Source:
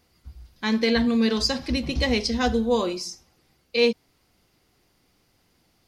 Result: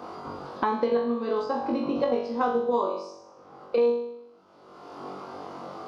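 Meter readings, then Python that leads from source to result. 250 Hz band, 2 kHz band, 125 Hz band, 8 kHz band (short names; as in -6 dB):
-7.0 dB, -11.0 dB, under -10 dB, under -20 dB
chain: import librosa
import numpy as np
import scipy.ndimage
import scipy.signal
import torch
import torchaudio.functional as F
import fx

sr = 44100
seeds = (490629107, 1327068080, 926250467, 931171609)

p1 = scipy.signal.sosfilt(scipy.signal.butter(2, 350.0, 'highpass', fs=sr, output='sos'), x)
p2 = fx.high_shelf_res(p1, sr, hz=1500.0, db=-8.0, q=3.0)
p3 = fx.level_steps(p2, sr, step_db=24)
p4 = p2 + F.gain(torch.from_numpy(p3), 1.0).numpy()
p5 = fx.spacing_loss(p4, sr, db_at_10k=25)
p6 = p5 + fx.room_flutter(p5, sr, wall_m=3.6, rt60_s=0.56, dry=0)
p7 = fx.band_squash(p6, sr, depth_pct=100)
y = F.gain(torch.from_numpy(p7), -6.5).numpy()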